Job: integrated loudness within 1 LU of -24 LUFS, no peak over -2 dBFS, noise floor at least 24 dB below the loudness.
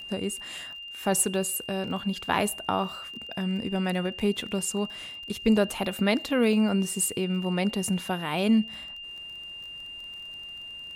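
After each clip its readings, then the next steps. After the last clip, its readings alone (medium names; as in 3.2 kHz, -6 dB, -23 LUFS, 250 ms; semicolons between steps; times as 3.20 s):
tick rate 24 per s; steady tone 2.8 kHz; tone level -38 dBFS; loudness -28.0 LUFS; peak level -9.5 dBFS; loudness target -24.0 LUFS
-> de-click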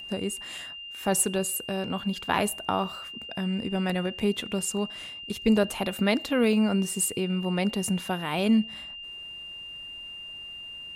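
tick rate 0.18 per s; steady tone 2.8 kHz; tone level -38 dBFS
-> band-stop 2.8 kHz, Q 30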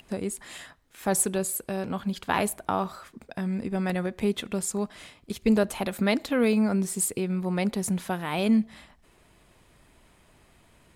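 steady tone not found; loudness -27.5 LUFS; peak level -10.0 dBFS; loudness target -24.0 LUFS
-> trim +3.5 dB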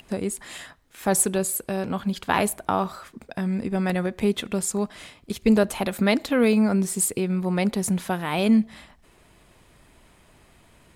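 loudness -24.0 LUFS; peak level -6.5 dBFS; noise floor -57 dBFS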